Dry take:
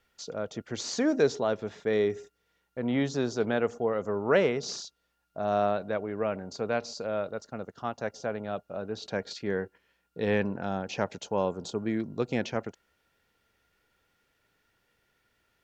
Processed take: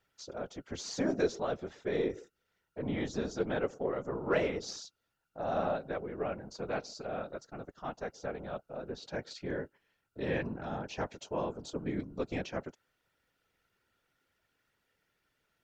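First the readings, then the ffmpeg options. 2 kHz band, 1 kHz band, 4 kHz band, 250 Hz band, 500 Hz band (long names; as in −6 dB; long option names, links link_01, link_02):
−6.0 dB, −5.5 dB, −6.0 dB, −6.0 dB, −6.5 dB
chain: -af "afftfilt=real='hypot(re,im)*cos(2*PI*random(0))':imag='hypot(re,im)*sin(2*PI*random(1))':win_size=512:overlap=0.75,aeval=exprs='0.15*(cos(1*acos(clip(val(0)/0.15,-1,1)))-cos(1*PI/2))+0.0015*(cos(8*acos(clip(val(0)/0.15,-1,1)))-cos(8*PI/2))':channel_layout=same"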